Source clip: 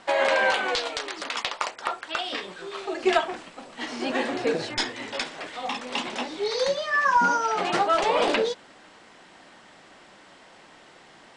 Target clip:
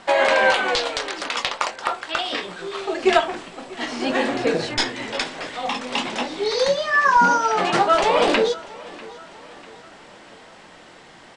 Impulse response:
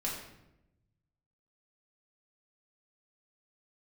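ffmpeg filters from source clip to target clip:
-filter_complex "[0:a]lowshelf=f=190:g=5,asplit=2[a][b];[b]adelay=23,volume=-12.5dB[c];[a][c]amix=inputs=2:normalize=0,bandreject=f=51.37:t=h:w=4,bandreject=f=102.74:t=h:w=4,bandreject=f=154.11:t=h:w=4,bandreject=f=205.48:t=h:w=4,bandreject=f=256.85:t=h:w=4,bandreject=f=308.22:t=h:w=4,bandreject=f=359.59:t=h:w=4,bandreject=f=410.96:t=h:w=4,bandreject=f=462.33:t=h:w=4,asplit=2[d][e];[e]aecho=0:1:645|1290|1935|2580:0.0891|0.0437|0.0214|0.0105[f];[d][f]amix=inputs=2:normalize=0,volume=4.5dB"

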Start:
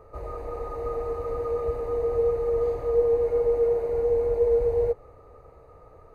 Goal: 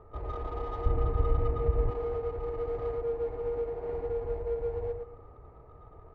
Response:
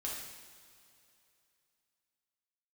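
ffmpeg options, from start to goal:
-filter_complex "[0:a]acompressor=threshold=-27dB:ratio=4,equalizer=f=530:w=3.4:g=-10,asplit=2[a][b];[b]aecho=0:1:114|228|342|456:0.596|0.167|0.0467|0.0131[c];[a][c]amix=inputs=2:normalize=0,adynamicsmooth=sensitivity=5.5:basefreq=1.5k,asettb=1/sr,asplit=3[d][e][f];[d]atrim=end=0.864[g];[e]atrim=start=0.86:end=1.9,asetpts=PTS-STARTPTS,afade=t=in:d=0.004:c=qsin,afade=t=out:st=1.036:d=0.004:c=qsin,bass=f=250:g=12,treble=f=4k:g=-9[h];[f]atrim=start=1.896[i];[g][h]acrossfade=d=0.004:c1=hsin:c2=qsin[j];[j][i]acrossfade=d=0.004:c1=qsin:c2=hsin"

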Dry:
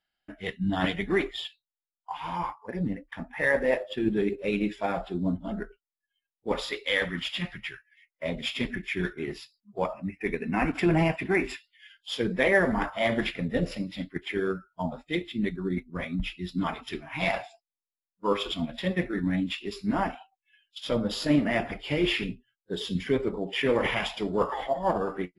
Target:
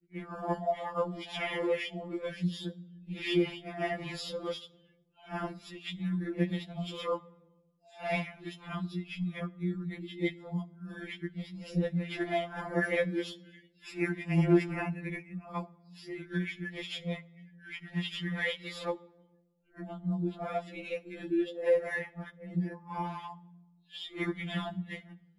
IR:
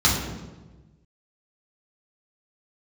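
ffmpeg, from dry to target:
-filter_complex "[0:a]areverse,asplit=2[a][b];[1:a]atrim=start_sample=2205,adelay=58[c];[b][c]afir=irnorm=-1:irlink=0,volume=-39.5dB[d];[a][d]amix=inputs=2:normalize=0,afftfilt=real='re*2.83*eq(mod(b,8),0)':imag='im*2.83*eq(mod(b,8),0)':win_size=2048:overlap=0.75,volume=-5dB"

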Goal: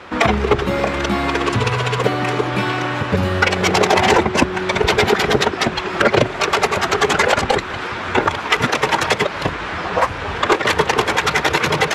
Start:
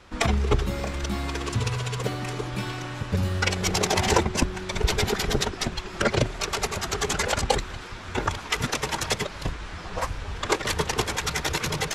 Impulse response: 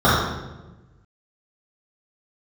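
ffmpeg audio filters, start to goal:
-filter_complex "[0:a]highpass=93,bass=f=250:g=-7,treble=f=4k:g=-13,asplit=2[a][b];[b]acompressor=threshold=-34dB:ratio=6,volume=0dB[c];[a][c]amix=inputs=2:normalize=0,aeval=exprs='clip(val(0),-1,0.2)':c=same,alimiter=level_in=11.5dB:limit=-1dB:release=50:level=0:latency=1,volume=-1dB"

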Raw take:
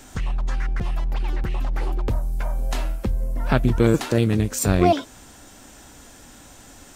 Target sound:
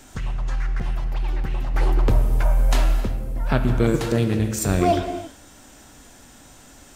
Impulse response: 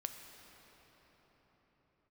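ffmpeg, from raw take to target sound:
-filter_complex "[0:a]asettb=1/sr,asplit=3[a][b][c];[a]atrim=end=1.744[d];[b]atrim=start=1.74:end=3.01,asetpts=PTS-STARTPTS,afade=t=in:d=0.004:c=qsin,afade=t=out:st=1.266:d=0.004:c=qsin,acontrast=76[e];[c]atrim=start=3.006[f];[d][e]acrossfade=d=0.004:c1=hsin:c2=qsin[g];[g][f]acrossfade=d=0.004:c1=qsin:c2=hsin[h];[1:a]atrim=start_sample=2205,afade=t=out:st=0.43:d=0.01,atrim=end_sample=19404,asetrate=48510,aresample=44100[i];[h][i]afir=irnorm=-1:irlink=0,volume=1.5dB"

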